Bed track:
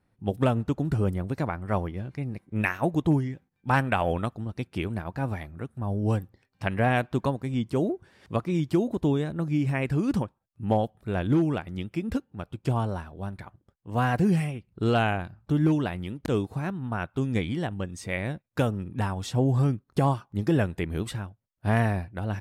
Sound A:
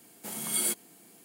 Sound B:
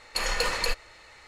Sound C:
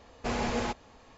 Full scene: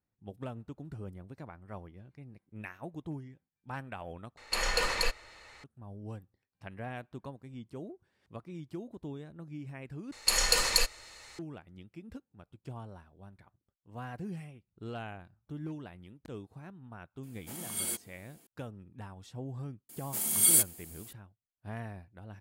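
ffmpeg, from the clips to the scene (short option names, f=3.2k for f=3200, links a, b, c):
-filter_complex "[2:a]asplit=2[a][b];[1:a]asplit=2[c][d];[0:a]volume=-17.5dB[e];[b]bass=f=250:g=1,treble=f=4k:g=12[f];[d]highshelf=f=5.1k:g=11.5[g];[e]asplit=3[h][i][j];[h]atrim=end=4.374[k];[a]atrim=end=1.27,asetpts=PTS-STARTPTS,volume=-2.5dB[l];[i]atrim=start=5.636:end=10.124[m];[f]atrim=end=1.27,asetpts=PTS-STARTPTS,volume=-3.5dB[n];[j]atrim=start=11.386[o];[c]atrim=end=1.24,asetpts=PTS-STARTPTS,volume=-6dB,afade=t=in:d=0.004:c=hsin,afade=t=out:st=1.236:d=0.004:c=hsin,adelay=17230[p];[g]atrim=end=1.24,asetpts=PTS-STARTPTS,volume=-3dB,afade=t=in:d=0.004:c=hsin,afade=t=out:st=1.236:d=0.004:c=hsin,adelay=19890[q];[k][l]acrossfade=d=0.004:c1=hsin:c2=hsin[r];[r][m]acrossfade=d=0.004:c1=hsin:c2=hsin[s];[s][n]acrossfade=d=0.004:c1=hsin:c2=hsin[t];[t][o]acrossfade=d=0.004:c1=hsin:c2=hsin[u];[u][p][q]amix=inputs=3:normalize=0"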